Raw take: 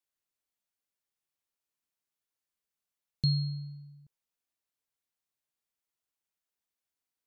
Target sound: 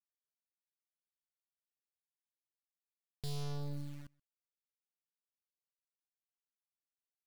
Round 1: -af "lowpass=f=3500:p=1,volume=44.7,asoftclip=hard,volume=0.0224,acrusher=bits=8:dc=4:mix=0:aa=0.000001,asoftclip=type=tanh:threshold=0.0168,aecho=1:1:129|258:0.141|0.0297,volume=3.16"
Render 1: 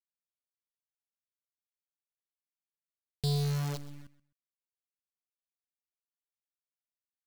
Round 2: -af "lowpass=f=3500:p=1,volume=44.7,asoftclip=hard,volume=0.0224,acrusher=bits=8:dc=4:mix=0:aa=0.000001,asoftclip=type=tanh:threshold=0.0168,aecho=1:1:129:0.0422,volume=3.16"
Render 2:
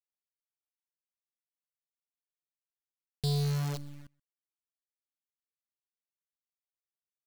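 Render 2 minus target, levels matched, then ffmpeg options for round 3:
overload inside the chain: distortion -5 dB
-af "lowpass=f=3500:p=1,volume=141,asoftclip=hard,volume=0.00708,acrusher=bits=8:dc=4:mix=0:aa=0.000001,asoftclip=type=tanh:threshold=0.0168,aecho=1:1:129:0.0422,volume=3.16"

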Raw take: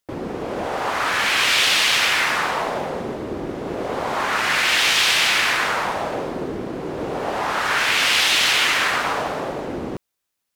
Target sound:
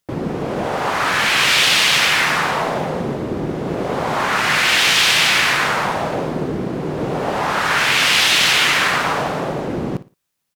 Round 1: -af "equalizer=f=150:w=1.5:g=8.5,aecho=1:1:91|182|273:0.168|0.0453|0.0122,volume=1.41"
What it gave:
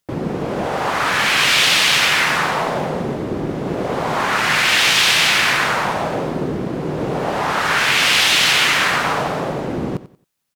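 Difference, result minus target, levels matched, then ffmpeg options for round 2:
echo 34 ms late
-af "equalizer=f=150:w=1.5:g=8.5,aecho=1:1:57|114|171:0.168|0.0453|0.0122,volume=1.41"

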